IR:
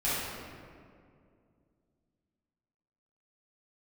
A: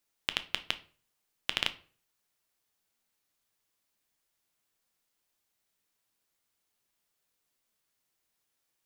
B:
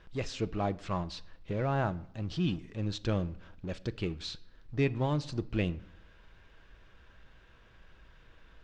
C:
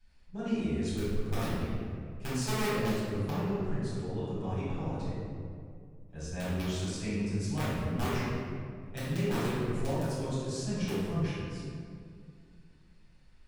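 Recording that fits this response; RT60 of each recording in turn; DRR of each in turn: C; 0.45, 0.70, 2.3 seconds; 10.0, 13.0, −12.0 decibels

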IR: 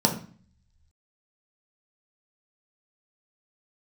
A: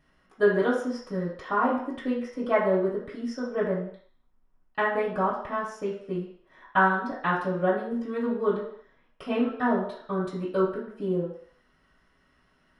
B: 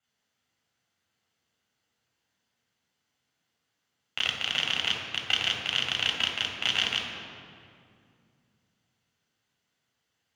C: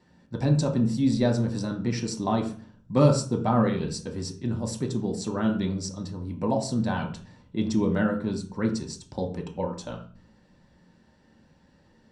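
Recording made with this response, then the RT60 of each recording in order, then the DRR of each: C; non-exponential decay, 2.3 s, 0.45 s; −8.0, −4.0, 0.5 decibels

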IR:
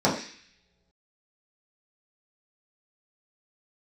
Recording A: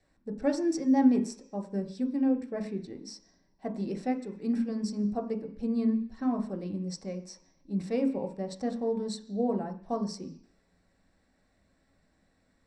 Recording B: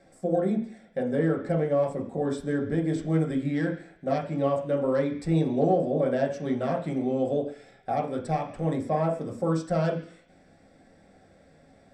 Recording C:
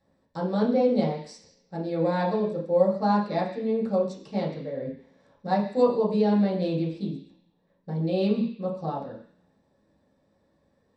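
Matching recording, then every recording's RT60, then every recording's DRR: C; non-exponential decay, non-exponential decay, non-exponential decay; 4.0, −1.0, −7.5 decibels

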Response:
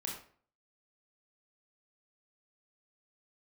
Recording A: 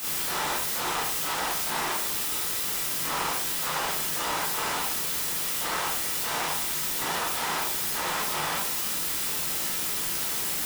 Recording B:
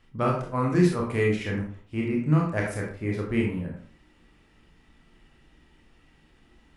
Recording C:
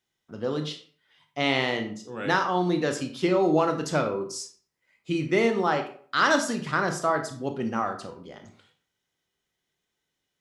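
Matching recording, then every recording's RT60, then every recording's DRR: B; 0.50, 0.50, 0.50 seconds; −7.5, −2.0, 5.5 decibels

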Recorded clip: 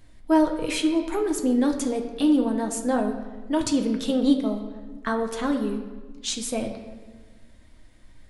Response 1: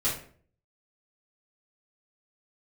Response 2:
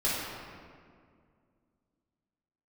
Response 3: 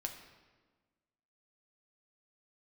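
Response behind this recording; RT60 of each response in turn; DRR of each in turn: 3; 0.50, 2.1, 1.4 seconds; −9.5, −9.5, 2.5 decibels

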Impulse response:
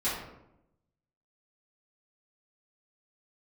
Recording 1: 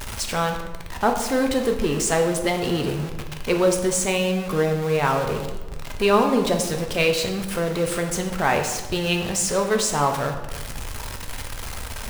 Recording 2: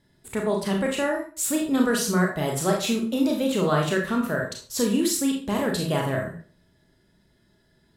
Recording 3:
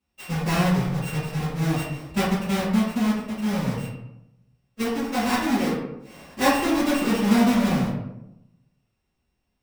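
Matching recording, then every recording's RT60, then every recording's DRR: 3; 1.2, 0.40, 0.85 seconds; 3.5, 0.5, −12.5 decibels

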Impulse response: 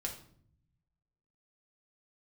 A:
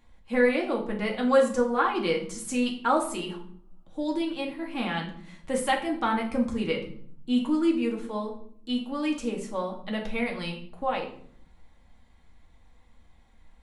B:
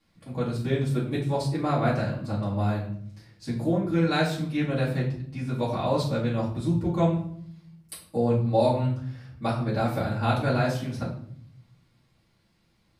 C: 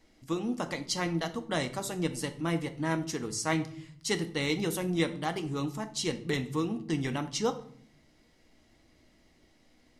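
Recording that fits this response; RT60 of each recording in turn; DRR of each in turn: A; 0.60, 0.60, 0.60 seconds; −0.5, −8.5, 7.0 decibels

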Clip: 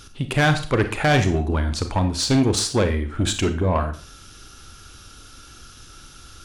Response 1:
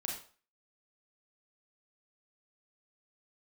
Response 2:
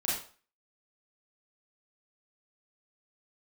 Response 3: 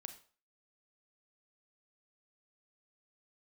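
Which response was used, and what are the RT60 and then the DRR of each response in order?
3; 0.40, 0.40, 0.40 seconds; −1.5, −7.0, 7.5 decibels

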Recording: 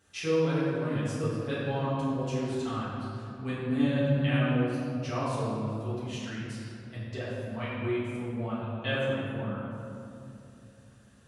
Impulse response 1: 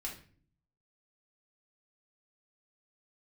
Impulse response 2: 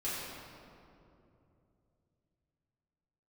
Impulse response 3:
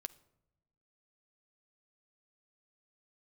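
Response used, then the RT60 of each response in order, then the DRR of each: 2; 0.45, 2.8, 0.85 seconds; −3.5, −10.5, 10.0 decibels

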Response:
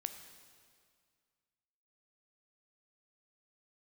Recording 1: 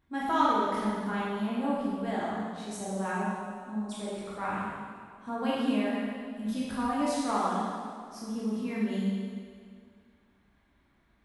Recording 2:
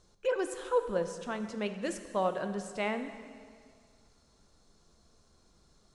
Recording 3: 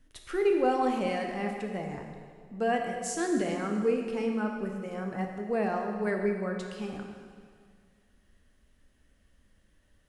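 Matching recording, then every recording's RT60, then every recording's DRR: 2; 2.0, 2.0, 2.0 seconds; −8.0, 8.0, 2.0 decibels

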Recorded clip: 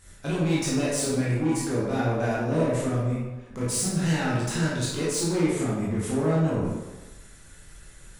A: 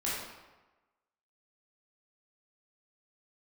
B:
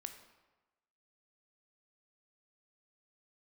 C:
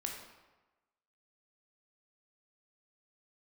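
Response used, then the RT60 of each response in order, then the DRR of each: A; 1.2, 1.1, 1.1 seconds; −8.0, 6.5, 0.5 decibels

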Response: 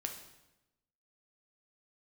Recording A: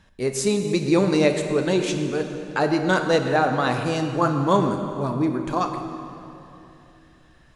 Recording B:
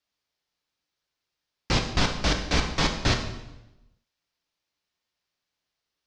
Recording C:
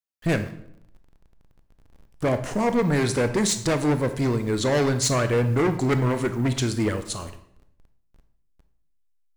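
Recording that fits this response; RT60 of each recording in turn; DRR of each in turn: B; 3.0, 0.95, 0.70 seconds; 5.0, 3.0, 9.0 decibels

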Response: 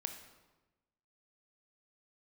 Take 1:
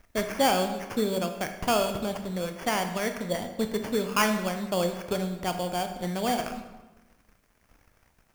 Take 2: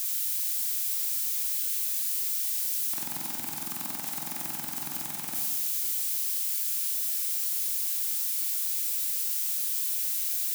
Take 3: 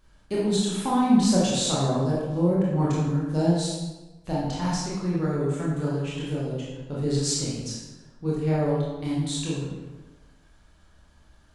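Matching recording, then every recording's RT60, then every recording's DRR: 1; 1.1, 1.1, 1.1 seconds; 6.0, 1.0, −6.5 decibels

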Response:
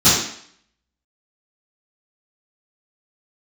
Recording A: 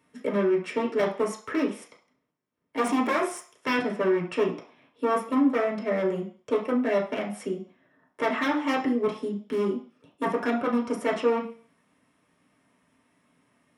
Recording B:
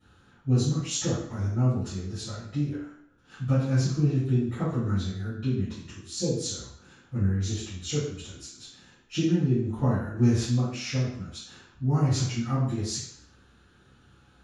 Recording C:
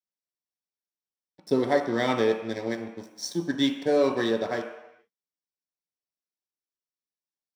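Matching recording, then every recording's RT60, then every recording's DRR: B; 0.45 s, 0.60 s, non-exponential decay; −2.5, −16.5, 2.0 decibels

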